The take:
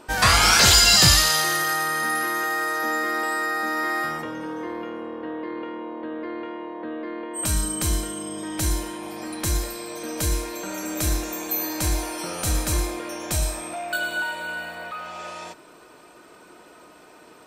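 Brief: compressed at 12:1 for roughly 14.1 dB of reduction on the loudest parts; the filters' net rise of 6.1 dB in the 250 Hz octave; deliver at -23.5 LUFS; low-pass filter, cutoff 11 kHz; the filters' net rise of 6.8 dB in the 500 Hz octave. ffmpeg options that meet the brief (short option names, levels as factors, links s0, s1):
-af "lowpass=11000,equalizer=f=250:t=o:g=5.5,equalizer=f=500:t=o:g=7,acompressor=threshold=0.0562:ratio=12,volume=1.88"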